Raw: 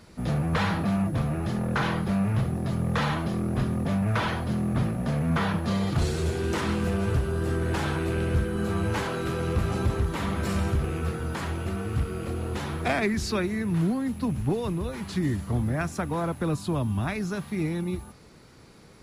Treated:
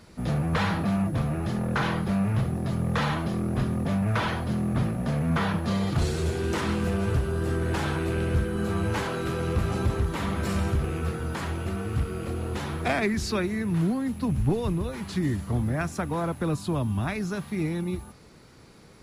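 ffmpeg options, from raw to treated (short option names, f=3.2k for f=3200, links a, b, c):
-filter_complex "[0:a]asettb=1/sr,asplit=3[a][b][c];[a]atrim=end=14.294[d];[b]atrim=start=14.29:end=14.82,asetpts=PTS-STARTPTS,afade=t=in:d=0.004:c=qsin,afade=t=out:st=0.526:d=0.004:c=qsin,lowshelf=f=79:g=11.5[e];[c]atrim=start=14.816[f];[d][e]acrossfade=d=0.004:c1=hsin:c2=qsin[g];[g][f]acrossfade=d=0.004:c1=qsin:c2=hsin"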